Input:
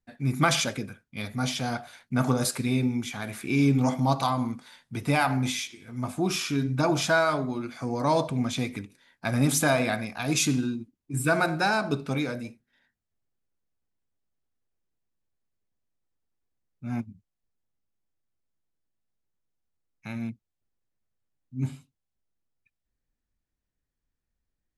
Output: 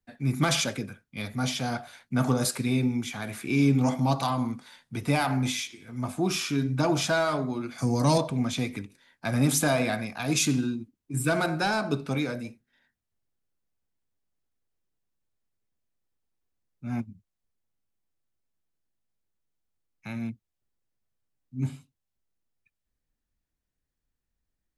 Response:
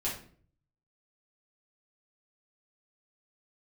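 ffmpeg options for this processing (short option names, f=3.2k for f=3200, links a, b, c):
-filter_complex "[0:a]asettb=1/sr,asplit=3[a][b][c];[a]atrim=end=7.784[d];[b]atrim=start=7.78:end=8.18,asetpts=PTS-STARTPTS,afade=t=in:d=0.004:c=qsin,afade=t=out:st=0.396:d=0.004:c=qsin,bass=f=250:g=9,treble=f=4k:g=13[e];[c]atrim=start=8.176[f];[d][e]acrossfade=d=0.004:c1=hsin:c2=qsin[g];[g][f]acrossfade=d=0.004:c1=qsin:c2=hsin,acrossover=split=110|650|3000[h][i][j][k];[j]asoftclip=type=tanh:threshold=-25.5dB[l];[h][i][l][k]amix=inputs=4:normalize=0"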